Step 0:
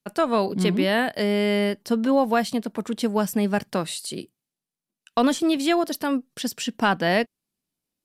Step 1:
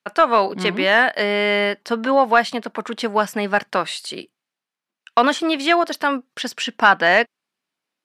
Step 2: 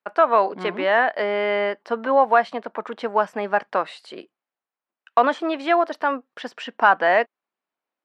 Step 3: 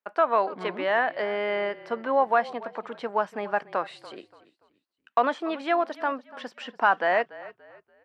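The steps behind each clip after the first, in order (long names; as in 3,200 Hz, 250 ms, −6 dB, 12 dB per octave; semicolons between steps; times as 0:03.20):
resonant band-pass 1,500 Hz, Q 0.85; in parallel at −12 dB: sine wavefolder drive 5 dB, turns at −9 dBFS; on the sum: level +7 dB
resonant band-pass 730 Hz, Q 0.81
echo with shifted repeats 288 ms, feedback 33%, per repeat −34 Hz, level −18.5 dB; level −5.5 dB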